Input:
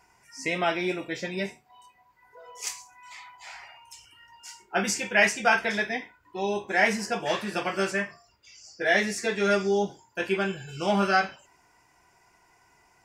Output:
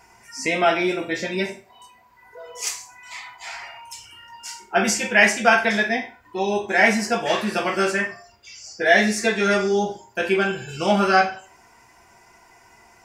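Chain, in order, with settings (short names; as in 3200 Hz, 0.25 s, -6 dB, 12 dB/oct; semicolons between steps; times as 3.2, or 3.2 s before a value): in parallel at -3 dB: compressor, threshold -39 dBFS, peak gain reduction 21.5 dB; on the sum: reverb RT60 0.40 s, pre-delay 4 ms, DRR 4 dB; gain +3.5 dB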